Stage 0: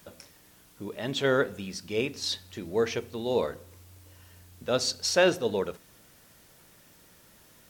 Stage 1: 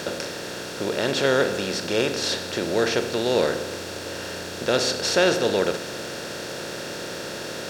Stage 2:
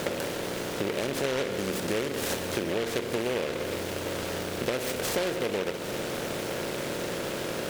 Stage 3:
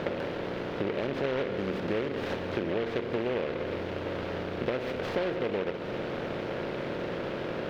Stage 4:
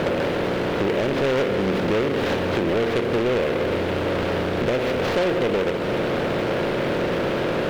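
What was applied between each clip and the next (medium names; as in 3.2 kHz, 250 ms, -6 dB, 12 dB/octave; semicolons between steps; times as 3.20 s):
spectral levelling over time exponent 0.4
peaking EQ 4.4 kHz -6.5 dB 3 oct; compression 10:1, threshold -28 dBFS, peak gain reduction 12 dB; delay time shaken by noise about 1.9 kHz, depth 0.11 ms; trim +2.5 dB
distance through air 320 m
waveshaping leveller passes 3; trim +1 dB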